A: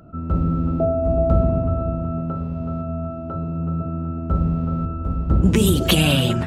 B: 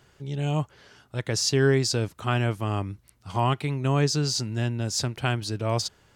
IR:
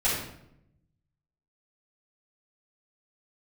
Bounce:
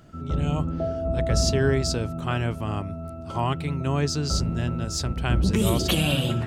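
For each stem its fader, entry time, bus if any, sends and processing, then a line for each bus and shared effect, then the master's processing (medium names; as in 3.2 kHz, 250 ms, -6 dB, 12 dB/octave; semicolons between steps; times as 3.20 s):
-7.0 dB, 0.00 s, send -20 dB, none
-2.0 dB, 0.00 s, no send, none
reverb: on, RT60 0.75 s, pre-delay 4 ms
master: none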